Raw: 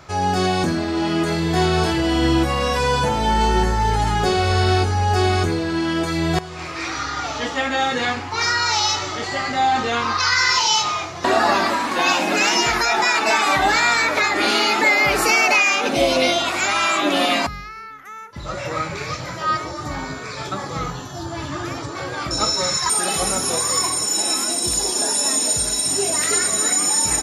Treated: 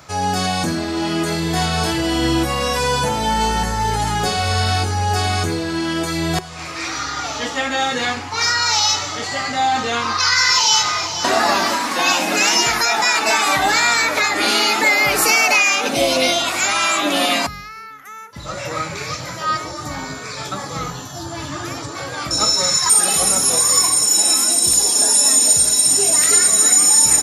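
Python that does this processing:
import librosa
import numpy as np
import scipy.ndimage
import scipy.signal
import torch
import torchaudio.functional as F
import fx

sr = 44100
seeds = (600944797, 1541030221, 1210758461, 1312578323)

y = fx.echo_throw(x, sr, start_s=10.23, length_s=0.83, ms=480, feedback_pct=60, wet_db=-10.5)
y = scipy.signal.sosfilt(scipy.signal.butter(2, 66.0, 'highpass', fs=sr, output='sos'), y)
y = fx.high_shelf(y, sr, hz=6300.0, db=11.5)
y = fx.notch(y, sr, hz=370.0, q=12.0)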